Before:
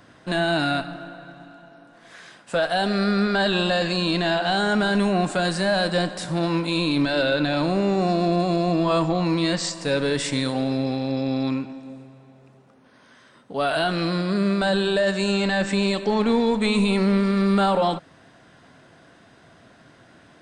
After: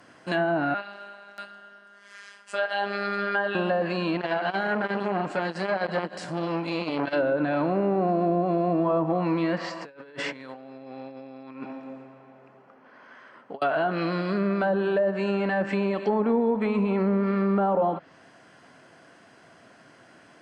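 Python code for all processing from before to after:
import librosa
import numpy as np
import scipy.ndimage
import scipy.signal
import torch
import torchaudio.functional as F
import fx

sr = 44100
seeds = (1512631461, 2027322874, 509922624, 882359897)

y = fx.chain(x, sr, fx.weighting(curve='A'),
    fx.robotise(hz=201.0),
    fx.echo_single(ms=640, db=-9.0), at=(0.74, 3.55))
y = fx.chain(y, sr, fx.high_shelf(hz=5500.0, db=-7.0),
    fx.transformer_sat(knee_hz=700.0), at=(4.17, 7.13))
y = fx.chain(y, sr, fx.lowpass(hz=1500.0, slope=12),
    fx.tilt_eq(slope=3.0),
    fx.over_compress(threshold_db=-35.0, ratio=-0.5), at=(9.58, 13.62))
y = fx.highpass(y, sr, hz=270.0, slope=6)
y = fx.notch(y, sr, hz=3700.0, q=5.8)
y = fx.env_lowpass_down(y, sr, base_hz=840.0, full_db=-18.0)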